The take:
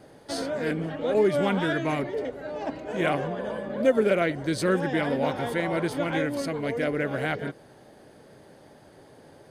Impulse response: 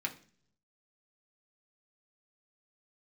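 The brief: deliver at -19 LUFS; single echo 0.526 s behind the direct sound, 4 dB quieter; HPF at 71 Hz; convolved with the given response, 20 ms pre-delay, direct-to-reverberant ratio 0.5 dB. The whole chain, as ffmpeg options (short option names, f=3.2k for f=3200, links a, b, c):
-filter_complex "[0:a]highpass=71,aecho=1:1:526:0.631,asplit=2[a][b];[1:a]atrim=start_sample=2205,adelay=20[c];[b][c]afir=irnorm=-1:irlink=0,volume=-3.5dB[d];[a][d]amix=inputs=2:normalize=0,volume=5dB"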